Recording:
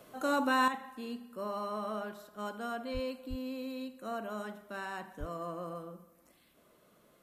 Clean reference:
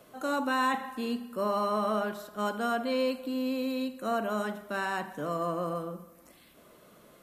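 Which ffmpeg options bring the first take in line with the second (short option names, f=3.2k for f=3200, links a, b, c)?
-filter_complex "[0:a]asplit=3[a][b][c];[a]afade=t=out:st=2.93:d=0.02[d];[b]highpass=f=140:w=0.5412,highpass=f=140:w=1.3066,afade=t=in:st=2.93:d=0.02,afade=t=out:st=3.05:d=0.02[e];[c]afade=t=in:st=3.05:d=0.02[f];[d][e][f]amix=inputs=3:normalize=0,asplit=3[g][h][i];[g]afade=t=out:st=3.29:d=0.02[j];[h]highpass=f=140:w=0.5412,highpass=f=140:w=1.3066,afade=t=in:st=3.29:d=0.02,afade=t=out:st=3.41:d=0.02[k];[i]afade=t=in:st=3.41:d=0.02[l];[j][k][l]amix=inputs=3:normalize=0,asplit=3[m][n][o];[m]afade=t=out:st=5.19:d=0.02[p];[n]highpass=f=140:w=0.5412,highpass=f=140:w=1.3066,afade=t=in:st=5.19:d=0.02,afade=t=out:st=5.31:d=0.02[q];[o]afade=t=in:st=5.31:d=0.02[r];[p][q][r]amix=inputs=3:normalize=0,asetnsamples=n=441:p=0,asendcmd='0.68 volume volume 8.5dB',volume=0dB"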